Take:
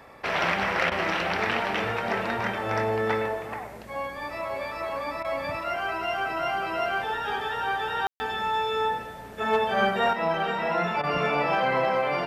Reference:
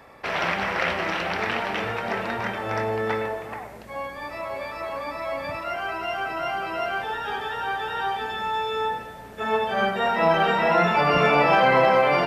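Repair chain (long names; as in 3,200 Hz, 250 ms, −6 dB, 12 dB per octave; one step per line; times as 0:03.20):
clipped peaks rebuilt −14 dBFS
ambience match 0:08.07–0:08.20
repair the gap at 0:00.90/0:05.23/0:11.02, 14 ms
level 0 dB, from 0:10.13 +6.5 dB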